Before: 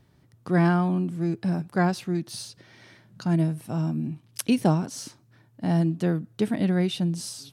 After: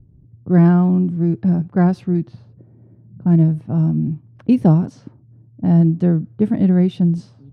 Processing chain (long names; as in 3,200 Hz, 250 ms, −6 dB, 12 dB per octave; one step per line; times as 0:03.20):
low-pass that shuts in the quiet parts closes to 350 Hz, open at −22.5 dBFS
spectral tilt −4 dB per octave